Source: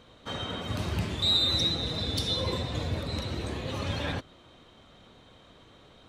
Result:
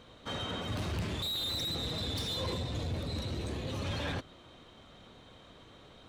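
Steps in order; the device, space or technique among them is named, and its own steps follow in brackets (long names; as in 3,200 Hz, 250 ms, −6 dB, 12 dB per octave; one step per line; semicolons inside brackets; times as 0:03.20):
0:02.53–0:03.85: parametric band 1,400 Hz −5 dB 2.5 octaves
saturation between pre-emphasis and de-emphasis (high-shelf EQ 4,800 Hz +10 dB; soft clipping −29.5 dBFS, distortion −6 dB; high-shelf EQ 4,800 Hz −10 dB)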